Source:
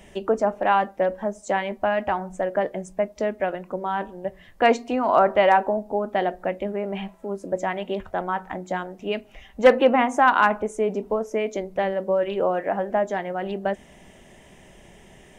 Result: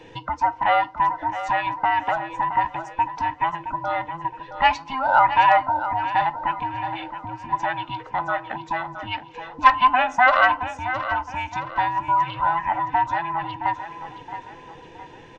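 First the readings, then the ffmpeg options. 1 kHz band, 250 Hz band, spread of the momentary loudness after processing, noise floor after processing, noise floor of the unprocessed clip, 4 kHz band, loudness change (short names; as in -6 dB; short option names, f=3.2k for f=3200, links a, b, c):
+5.0 dB, -9.0 dB, 15 LU, -45 dBFS, -50 dBFS, +3.5 dB, +1.5 dB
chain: -filter_complex "[0:a]afftfilt=real='real(if(between(b,1,1008),(2*floor((b-1)/24)+1)*24-b,b),0)':imag='imag(if(between(b,1,1008),(2*floor((b-1)/24)+1)*24-b,b),0)*if(between(b,1,1008),-1,1)':win_size=2048:overlap=0.75,lowpass=f=5.3k:w=0.5412,lowpass=f=5.3k:w=1.3066,acrossover=split=580|2400[a][b][c];[a]acompressor=threshold=-41dB:ratio=8[d];[d][b][c]amix=inputs=3:normalize=0,aecho=1:1:668|1336|2004|2672:0.282|0.113|0.0451|0.018,volume=3dB"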